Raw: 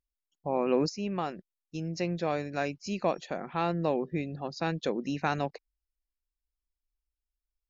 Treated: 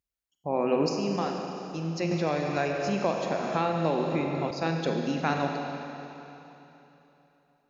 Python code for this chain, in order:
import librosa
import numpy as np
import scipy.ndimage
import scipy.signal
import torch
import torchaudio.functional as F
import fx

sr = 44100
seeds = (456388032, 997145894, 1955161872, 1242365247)

y = scipy.signal.sosfilt(scipy.signal.butter(2, 59.0, 'highpass', fs=sr, output='sos'), x)
y = fx.rev_schroeder(y, sr, rt60_s=3.3, comb_ms=33, drr_db=2.0)
y = fx.band_squash(y, sr, depth_pct=70, at=(2.11, 4.51))
y = F.gain(torch.from_numpy(y), 1.0).numpy()